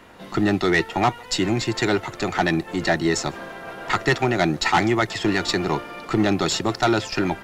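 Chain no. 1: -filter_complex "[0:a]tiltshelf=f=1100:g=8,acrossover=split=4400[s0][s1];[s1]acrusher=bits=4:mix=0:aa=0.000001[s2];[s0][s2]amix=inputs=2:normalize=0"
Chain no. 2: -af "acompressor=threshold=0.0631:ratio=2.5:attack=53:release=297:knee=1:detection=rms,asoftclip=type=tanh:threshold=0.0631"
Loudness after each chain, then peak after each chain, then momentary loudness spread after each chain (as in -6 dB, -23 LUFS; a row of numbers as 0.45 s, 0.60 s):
-18.0 LUFS, -30.0 LUFS; -2.0 dBFS, -24.0 dBFS; 8 LU, 4 LU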